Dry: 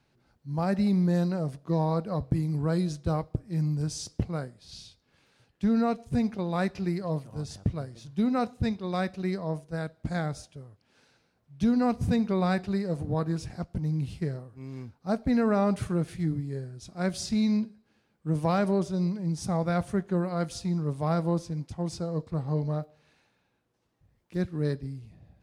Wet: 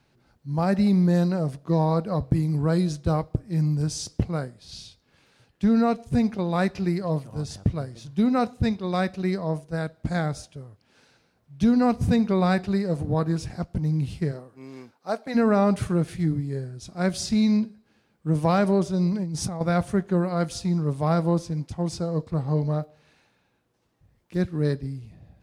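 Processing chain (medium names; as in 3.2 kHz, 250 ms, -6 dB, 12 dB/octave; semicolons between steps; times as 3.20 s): 14.31–15.34 s: high-pass 190 Hz -> 570 Hz 12 dB/octave; 19.12–19.61 s: compressor with a negative ratio -33 dBFS, ratio -1; trim +4.5 dB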